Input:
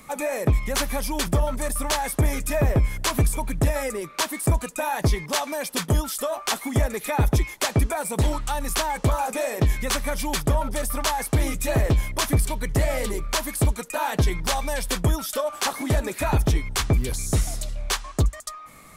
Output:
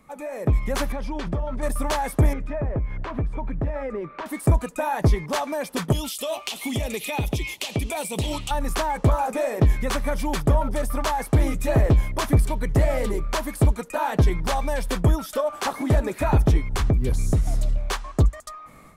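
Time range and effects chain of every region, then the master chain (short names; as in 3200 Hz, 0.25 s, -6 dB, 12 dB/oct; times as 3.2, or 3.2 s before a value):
0.92–1.63 LPF 4400 Hz + compressor 4:1, threshold -27 dBFS
2.33–4.26 compressor 3:1, threshold -28 dBFS + LPF 2200 Hz + mismatched tape noise reduction encoder only
5.92–8.51 HPF 59 Hz + resonant high shelf 2100 Hz +10 dB, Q 3 + compressor 5:1, threshold -22 dBFS
16.73–17.78 low shelf 330 Hz +6.5 dB + compressor 10:1, threshold -19 dBFS
whole clip: high shelf 2100 Hz -11 dB; AGC gain up to 10 dB; gain -6.5 dB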